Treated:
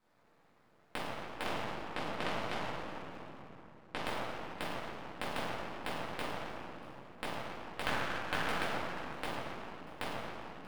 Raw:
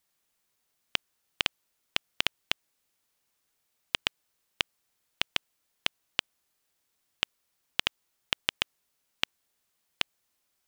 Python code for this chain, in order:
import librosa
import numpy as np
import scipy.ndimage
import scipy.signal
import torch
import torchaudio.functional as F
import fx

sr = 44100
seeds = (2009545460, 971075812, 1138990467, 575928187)

y = scipy.ndimage.median_filter(x, 15, mode='constant')
y = fx.lowpass(y, sr, hz=6400.0, slope=12, at=(1.42, 3.95), fade=0.02)
y = fx.peak_eq(y, sr, hz=1600.0, db=14.5, octaves=0.68, at=(7.81, 8.43))
y = scipy.signal.sosfilt(scipy.signal.butter(4, 110.0, 'highpass', fs=sr, output='sos'), y)
y = fx.high_shelf(y, sr, hz=2700.0, db=-10.5)
y = y + 10.0 ** (-19.5 / 20.0) * np.pad(y, (int(636 * sr / 1000.0), 0))[:len(y)]
y = fx.room_shoebox(y, sr, seeds[0], volume_m3=170.0, walls='hard', distance_m=2.1)
y = np.maximum(y, 0.0)
y = y * librosa.db_to_amplitude(11.5)